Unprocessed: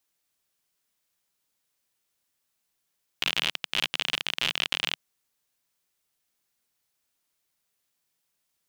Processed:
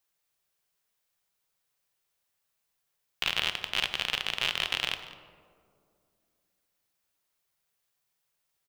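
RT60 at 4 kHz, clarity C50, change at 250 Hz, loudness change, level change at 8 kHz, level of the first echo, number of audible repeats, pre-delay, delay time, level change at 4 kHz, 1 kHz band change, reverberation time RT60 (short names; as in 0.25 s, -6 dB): 0.80 s, 10.0 dB, -4.5 dB, -1.5 dB, -3.0 dB, -18.5 dB, 1, 3 ms, 0.195 s, -2.0 dB, 0.0 dB, 2.4 s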